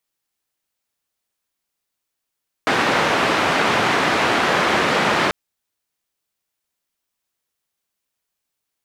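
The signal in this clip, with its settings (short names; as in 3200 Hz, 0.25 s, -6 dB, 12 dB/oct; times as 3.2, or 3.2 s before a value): noise band 150–1800 Hz, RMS -18 dBFS 2.64 s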